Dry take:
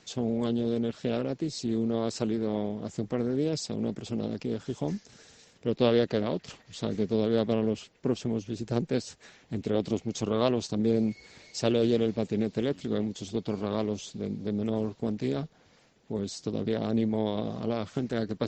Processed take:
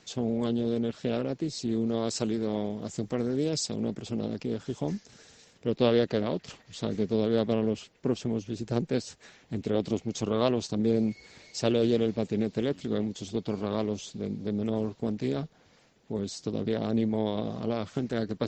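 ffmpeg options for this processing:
-filter_complex "[0:a]asettb=1/sr,asplit=3[a][b][c];[a]atrim=end=1.874[d];[b]atrim=start=1.87:end=3.8,asetpts=PTS-STARTPTS,afade=t=in:d=0.004:c=qsin,afade=t=out:st=1.926:d=0.004:c=qsin,aemphasis=mode=production:type=cd[e];[c]atrim=start=3.796[f];[d][e]acrossfade=d=0.004:c1=hsin:c2=qsin[g];[g][f]acrossfade=d=0.004:c1=qsin:c2=hsin"

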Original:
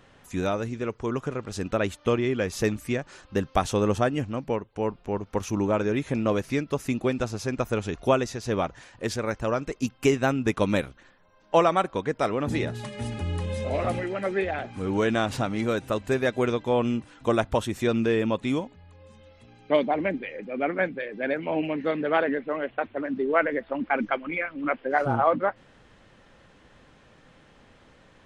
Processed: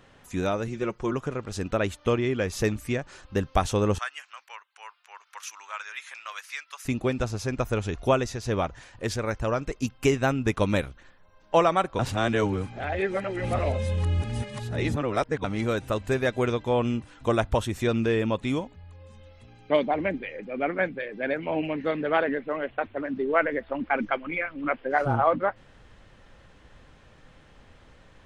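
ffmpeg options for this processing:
-filter_complex "[0:a]asettb=1/sr,asplit=3[a][b][c];[a]atrim=end=0.674[d];[b]atrim=start=0.67:end=1.13,asetpts=PTS-STARTPTS,afade=t=in:d=0.004:c=qsin,afade=t=out:st=0.456:d=0.004:c=qsin,aecho=1:1:5.6:0.65,atrim=end_sample=20286[e];[c]atrim=start=1.126[f];[d][e]acrossfade=d=0.004:c1=hsin:c2=qsin[g];[g][f]acrossfade=d=0.004:c1=qsin:c2=hsin,asettb=1/sr,asplit=3[h][i][j];[h]atrim=end=3.984[k];[i]atrim=start=3.98:end=6.85,asetpts=PTS-STARTPTS,afade=t=in:d=0.004:c=qsin,afade=t=out:st=2.866:d=0.004:c=qsin,highpass=f=1.2k:w=0.5412,highpass=f=1.2k:w=1.3066[l];[j]atrim=start=6.846[m];[k][l]acrossfade=d=0.004:c1=hsin:c2=qsin[n];[n][m]acrossfade=d=0.004:c1=qsin:c2=hsin,asplit=3[o][p][q];[o]atrim=end=11.992[r];[p]atrim=start=11.988:end=15.442,asetpts=PTS-STARTPTS,areverse[s];[q]atrim=start=15.438[t];[r][s]acrossfade=d=0.004:c1=hsin:c2=hsin[u];[u][t]acrossfade=d=0.004:c1=hsin:c2=hsin,asubboost=boost=2:cutoff=120"

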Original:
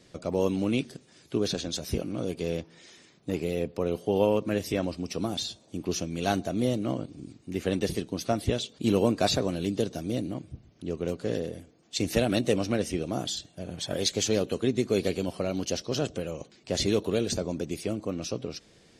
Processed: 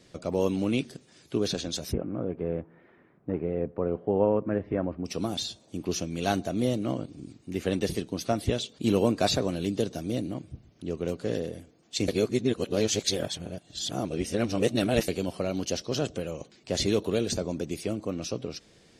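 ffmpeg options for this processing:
-filter_complex "[0:a]asplit=3[a][b][c];[a]afade=t=out:st=1.91:d=0.02[d];[b]lowpass=f=1.7k:w=0.5412,lowpass=f=1.7k:w=1.3066,afade=t=in:st=1.91:d=0.02,afade=t=out:st=5.04:d=0.02[e];[c]afade=t=in:st=5.04:d=0.02[f];[d][e][f]amix=inputs=3:normalize=0,asplit=3[g][h][i];[g]atrim=end=12.082[j];[h]atrim=start=12.078:end=15.082,asetpts=PTS-STARTPTS,areverse[k];[i]atrim=start=15.078[l];[j][k]acrossfade=d=0.004:c1=hsin:c2=hsin[m];[m][l]acrossfade=d=0.004:c1=hsin:c2=hsin"

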